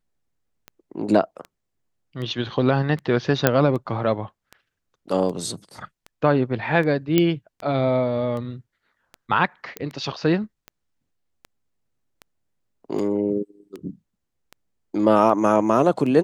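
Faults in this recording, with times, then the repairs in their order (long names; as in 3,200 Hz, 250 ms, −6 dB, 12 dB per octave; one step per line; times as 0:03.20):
scratch tick 78 rpm −22 dBFS
0:03.47: click −1 dBFS
0:07.18: click −5 dBFS
0:09.77: click −14 dBFS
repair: click removal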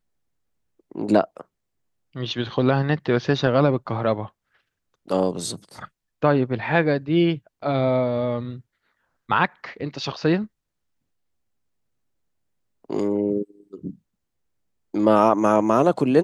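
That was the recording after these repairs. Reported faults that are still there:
none of them is left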